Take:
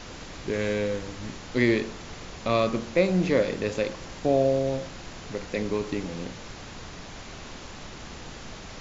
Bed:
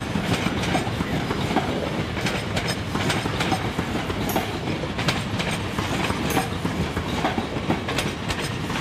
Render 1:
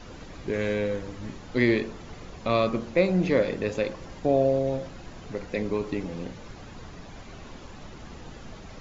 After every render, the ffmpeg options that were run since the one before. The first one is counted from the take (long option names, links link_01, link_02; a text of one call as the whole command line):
ffmpeg -i in.wav -af "afftdn=noise_reduction=9:noise_floor=-42" out.wav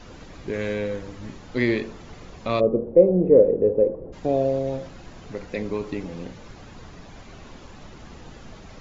ffmpeg -i in.wav -filter_complex "[0:a]asplit=3[link_01][link_02][link_03];[link_01]afade=type=out:start_time=2.59:duration=0.02[link_04];[link_02]lowpass=frequency=470:width_type=q:width=4.3,afade=type=in:start_time=2.59:duration=0.02,afade=type=out:start_time=4.12:duration=0.02[link_05];[link_03]afade=type=in:start_time=4.12:duration=0.02[link_06];[link_04][link_05][link_06]amix=inputs=3:normalize=0" out.wav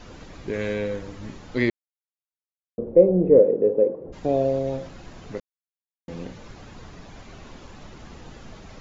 ffmpeg -i in.wav -filter_complex "[0:a]asettb=1/sr,asplit=3[link_01][link_02][link_03];[link_01]atrim=end=3.394[link_04];[link_02]atrim=start=3.39:end=4.05,asetpts=PTS-STARTPTS,afade=type=in:duration=0.004:curve=qsin,afade=type=out:start_time=0.656:duration=0.004:curve=qsin,highpass=180[link_05];[link_03]atrim=start=4.046[link_06];[link_04][link_05]acrossfade=duration=0.004:curve1=hsin:curve2=qsin[link_07];[link_07][link_06]acrossfade=duration=0.004:curve1=qsin:curve2=hsin,asplit=5[link_08][link_09][link_10][link_11][link_12];[link_08]atrim=end=1.7,asetpts=PTS-STARTPTS,afade=type=out:start_time=1.696:duration=0.004:curve=hsin[link_13];[link_09]atrim=start=1.7:end=2.78,asetpts=PTS-STARTPTS,volume=0[link_14];[link_10]atrim=start=2.78:end=5.4,asetpts=PTS-STARTPTS,afade=type=in:duration=0.004:curve=hsin,afade=type=out:start_time=2.616:duration=0.004:curve=hsin[link_15];[link_11]atrim=start=5.4:end=6.08,asetpts=PTS-STARTPTS,volume=0[link_16];[link_12]atrim=start=6.08,asetpts=PTS-STARTPTS,afade=type=in:duration=0.004:curve=hsin[link_17];[link_13][link_14][link_15][link_16][link_17]concat=n=5:v=0:a=1" out.wav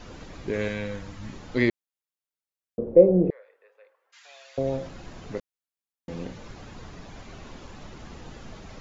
ffmpeg -i in.wav -filter_complex "[0:a]asettb=1/sr,asplit=3[link_01][link_02][link_03];[link_01]atrim=end=0.684[link_04];[link_02]atrim=start=0.68:end=1.33,asetpts=PTS-STARTPTS,afade=type=in:duration=0.004:curve=qsin,afade=type=out:start_time=0.646:duration=0.004:curve=qsin,equalizer=frequency=410:width_type=o:width=0.91:gain=-11[link_05];[link_03]atrim=start=1.326[link_06];[link_04][link_05]acrossfade=duration=0.004:curve1=hsin:curve2=qsin[link_07];[link_07][link_06]acrossfade=duration=0.004:curve1=qsin:curve2=hsin,asettb=1/sr,asplit=3[link_08][link_09][link_10];[link_08]atrim=end=3.304[link_11];[link_09]atrim=start=3.3:end=4.58,asetpts=PTS-STARTPTS,afade=type=in:duration=0.004:curve=qsin,afade=type=out:start_time=1.276:duration=0.004:curve=qsin,highpass=frequency=1500:width=0.5412,highpass=frequency=1500:width=1.3066[link_12];[link_10]atrim=start=4.576[link_13];[link_11][link_12]acrossfade=duration=0.004:curve1=hsin:curve2=qsin[link_14];[link_14][link_13]acrossfade=duration=0.004:curve1=qsin:curve2=hsin" out.wav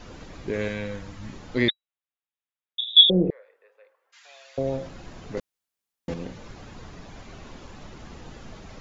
ffmpeg -i in.wav -filter_complex "[0:a]asettb=1/sr,asplit=3[link_01][link_02][link_03];[link_01]atrim=end=1.684[link_04];[link_02]atrim=start=1.68:end=3.1,asetpts=PTS-STARTPTS,afade=type=in:duration=0.004:curve=qsin,afade=type=out:start_time=1.416:duration=0.004:curve=qsin,lowpass=frequency=3300:width_type=q:width=0.5098,lowpass=frequency=3300:width_type=q:width=0.6013,lowpass=frequency=3300:width_type=q:width=0.9,lowpass=frequency=3300:width_type=q:width=2.563,afreqshift=-3900[link_05];[link_03]atrim=start=3.096[link_06];[link_04][link_05]acrossfade=duration=0.004:curve1=hsin:curve2=qsin[link_07];[link_07][link_06]acrossfade=duration=0.004:curve1=qsin:curve2=hsin,asettb=1/sr,asplit=3[link_08][link_09][link_10];[link_08]atrim=end=5.374[link_11];[link_09]atrim=start=5.37:end=6.14,asetpts=PTS-STARTPTS,afade=type=in:duration=0.004:curve=qsin,afade=type=out:start_time=0.766:duration=0.004:curve=qsin,acontrast=57[link_12];[link_10]atrim=start=6.136[link_13];[link_11][link_12]acrossfade=duration=0.004:curve1=hsin:curve2=qsin[link_14];[link_14][link_13]acrossfade=duration=0.004:curve1=qsin:curve2=hsin" out.wav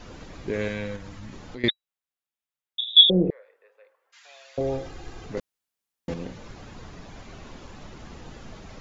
ffmpeg -i in.wav -filter_complex "[0:a]asettb=1/sr,asplit=3[link_01][link_02][link_03];[link_01]atrim=end=0.964[link_04];[link_02]atrim=start=0.96:end=1.64,asetpts=PTS-STARTPTS,afade=type=in:duration=0.004:curve=qsin,afade=type=out:start_time=0.676:duration=0.004:curve=qsin,acompressor=threshold=-35dB:ratio=6:attack=3.2:release=140:knee=1:detection=peak[link_05];[link_03]atrim=start=1.636[link_06];[link_04][link_05]acrossfade=duration=0.004:curve1=hsin:curve2=qsin[link_07];[link_07][link_06]acrossfade=duration=0.004:curve1=qsin:curve2=hsin,asettb=1/sr,asplit=3[link_08][link_09][link_10];[link_08]atrim=end=4.604[link_11];[link_09]atrim=start=4.6:end=5.26,asetpts=PTS-STARTPTS,afade=type=in:duration=0.004:curve=qsin,afade=type=out:start_time=0.656:duration=0.004:curve=qsin,aecho=1:1:2.5:0.67,atrim=end_sample=29106[link_12];[link_10]atrim=start=5.256[link_13];[link_11][link_12]acrossfade=duration=0.004:curve1=hsin:curve2=qsin[link_14];[link_14][link_13]acrossfade=duration=0.004:curve1=qsin:curve2=hsin" out.wav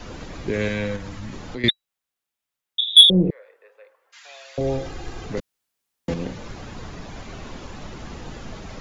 ffmpeg -i in.wav -filter_complex "[0:a]acrossover=split=250|1800[link_01][link_02][link_03];[link_02]alimiter=level_in=1.5dB:limit=-24dB:level=0:latency=1:release=180,volume=-1.5dB[link_04];[link_01][link_04][link_03]amix=inputs=3:normalize=0,acontrast=62" out.wav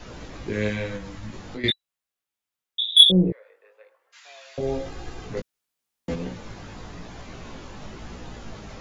ffmpeg -i in.wav -af "flanger=delay=16:depth=3.8:speed=0.97" out.wav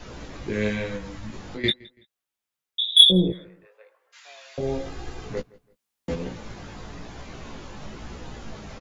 ffmpeg -i in.wav -filter_complex "[0:a]asplit=2[link_01][link_02];[link_02]adelay=14,volume=-13dB[link_03];[link_01][link_03]amix=inputs=2:normalize=0,asplit=2[link_04][link_05];[link_05]adelay=166,lowpass=frequency=4000:poles=1,volume=-23dB,asplit=2[link_06][link_07];[link_07]adelay=166,lowpass=frequency=4000:poles=1,volume=0.32[link_08];[link_04][link_06][link_08]amix=inputs=3:normalize=0" out.wav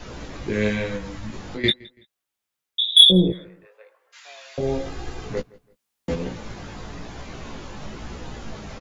ffmpeg -i in.wav -af "volume=3dB,alimiter=limit=-1dB:level=0:latency=1" out.wav